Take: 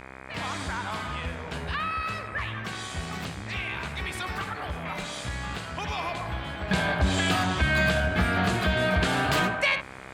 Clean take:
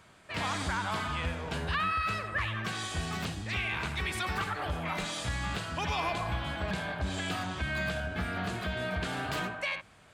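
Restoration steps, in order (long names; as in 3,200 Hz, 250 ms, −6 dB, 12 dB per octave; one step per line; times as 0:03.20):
hum removal 65.5 Hz, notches 38
level 0 dB, from 0:06.71 −9.5 dB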